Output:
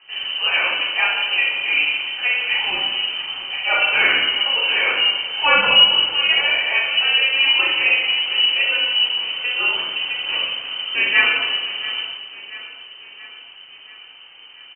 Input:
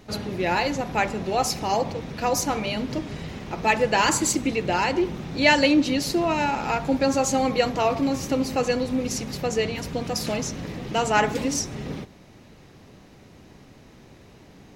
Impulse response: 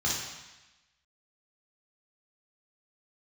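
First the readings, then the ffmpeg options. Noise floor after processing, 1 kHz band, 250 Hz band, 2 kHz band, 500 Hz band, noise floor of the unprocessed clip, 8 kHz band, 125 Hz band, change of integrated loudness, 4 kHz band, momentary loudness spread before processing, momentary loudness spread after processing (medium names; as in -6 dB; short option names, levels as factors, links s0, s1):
-43 dBFS, -3.0 dB, -18.5 dB, +11.5 dB, -8.5 dB, -50 dBFS, under -40 dB, under -15 dB, +7.5 dB, +17.0 dB, 10 LU, 10 LU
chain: -filter_complex "[0:a]highpass=150,aecho=1:1:683|1366|2049|2732|3415:0.158|0.0888|0.0497|0.0278|0.0156[s0];[1:a]atrim=start_sample=2205[s1];[s0][s1]afir=irnorm=-1:irlink=0,lowpass=f=2700:t=q:w=0.5098,lowpass=f=2700:t=q:w=0.6013,lowpass=f=2700:t=q:w=0.9,lowpass=f=2700:t=q:w=2.563,afreqshift=-3200,volume=0.631"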